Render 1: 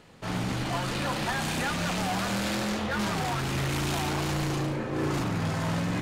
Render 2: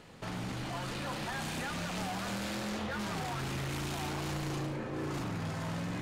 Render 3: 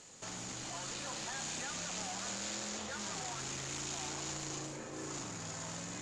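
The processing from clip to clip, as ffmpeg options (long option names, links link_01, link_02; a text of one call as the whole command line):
ffmpeg -i in.wav -af "alimiter=level_in=7dB:limit=-24dB:level=0:latency=1,volume=-7dB" out.wav
ffmpeg -i in.wav -filter_complex "[0:a]lowpass=frequency=7000:width_type=q:width=6.9,bass=frequency=250:gain=-6,treble=frequency=4000:gain=8,acrossover=split=5400[link_01][link_02];[link_02]acompressor=threshold=-41dB:ratio=4:attack=1:release=60[link_03];[link_01][link_03]amix=inputs=2:normalize=0,volume=-6dB" out.wav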